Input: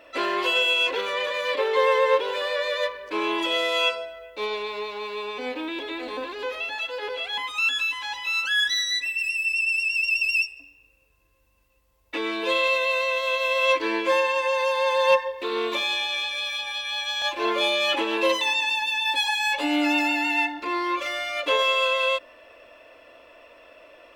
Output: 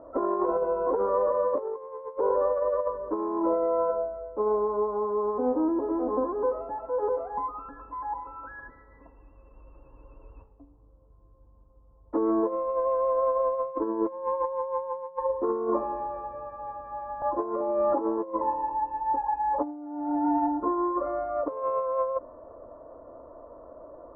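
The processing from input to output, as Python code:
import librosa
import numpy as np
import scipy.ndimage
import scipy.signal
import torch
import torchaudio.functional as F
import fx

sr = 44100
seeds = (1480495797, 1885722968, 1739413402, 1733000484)

y = scipy.signal.sosfilt(scipy.signal.butter(8, 1200.0, 'lowpass', fs=sr, output='sos'), x)
y = fx.low_shelf(y, sr, hz=330.0, db=9.0)
y = fx.over_compress(y, sr, threshold_db=-26.0, ratio=-0.5)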